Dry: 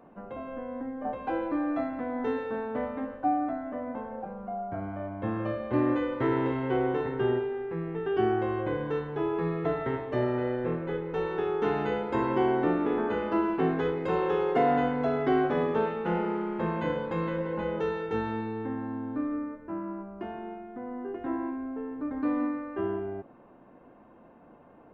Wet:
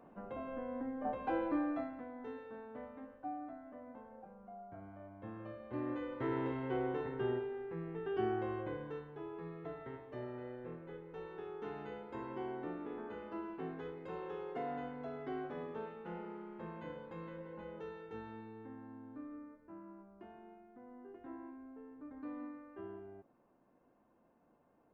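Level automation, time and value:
0:01.57 −5 dB
0:02.16 −16.5 dB
0:05.56 −16.5 dB
0:06.38 −9.5 dB
0:08.53 −9.5 dB
0:09.21 −17 dB

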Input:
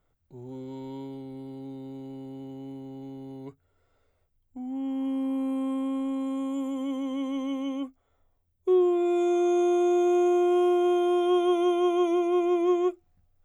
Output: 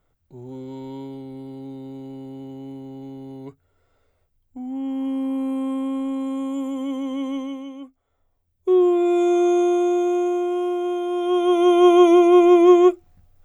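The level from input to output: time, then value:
0:07.34 +4 dB
0:07.74 −5.5 dB
0:08.85 +6 dB
0:09.45 +6 dB
0:10.56 −1 dB
0:11.09 −1 dB
0:11.88 +11.5 dB

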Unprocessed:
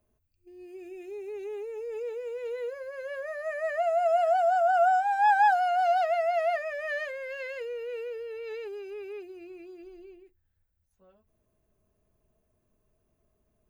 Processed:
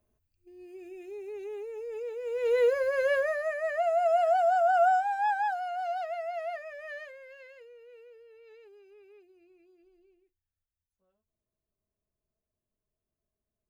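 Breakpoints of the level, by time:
0:02.16 −2 dB
0:02.58 +11 dB
0:03.12 +11 dB
0:03.58 −0.5 dB
0:04.92 −0.5 dB
0:05.44 −8.5 dB
0:06.91 −8.5 dB
0:07.72 −16.5 dB

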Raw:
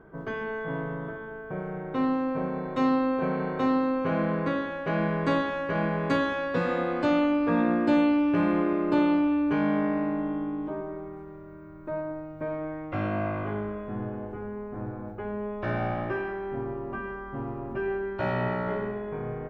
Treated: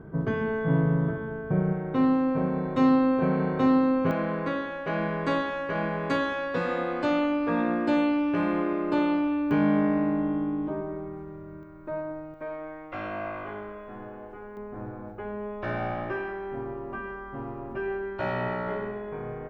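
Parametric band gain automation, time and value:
parametric band 120 Hz 2.8 octaves
+14 dB
from 0:01.73 +6.5 dB
from 0:04.11 −4 dB
from 0:09.51 +5 dB
from 0:11.63 −2.5 dB
from 0:12.34 −14.5 dB
from 0:14.57 −4 dB

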